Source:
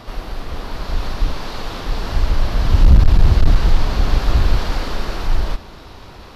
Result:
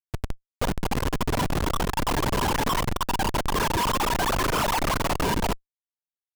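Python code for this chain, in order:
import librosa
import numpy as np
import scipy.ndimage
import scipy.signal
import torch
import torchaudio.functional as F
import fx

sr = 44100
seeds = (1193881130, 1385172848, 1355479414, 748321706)

y = fx.sine_speech(x, sr)
y = fx.power_curve(y, sr, exponent=1.4)
y = fx.schmitt(y, sr, flips_db=-13.0)
y = y * librosa.db_to_amplitude(-6.0)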